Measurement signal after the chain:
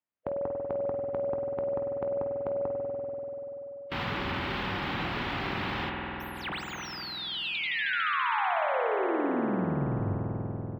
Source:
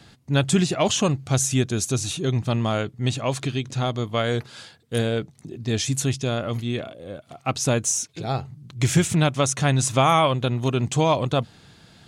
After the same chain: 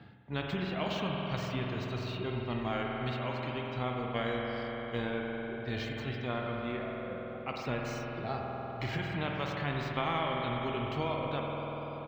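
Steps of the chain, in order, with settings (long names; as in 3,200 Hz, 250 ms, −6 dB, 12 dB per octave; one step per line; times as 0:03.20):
running median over 5 samples
noise reduction from a noise print of the clip's start 10 dB
high-pass filter 79 Hz
reverb reduction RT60 1.2 s
parametric band 10,000 Hz −11.5 dB 0.33 octaves
harmonic and percussive parts rebalanced percussive −12 dB
downward compressor, threshold −23 dBFS
amplitude modulation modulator 75 Hz, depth 10%
high-frequency loss of the air 440 metres
double-tracking delay 21 ms −14 dB
spring reverb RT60 3.2 s, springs 48 ms, chirp 70 ms, DRR 2 dB
every bin compressed towards the loudest bin 2 to 1
level −2.5 dB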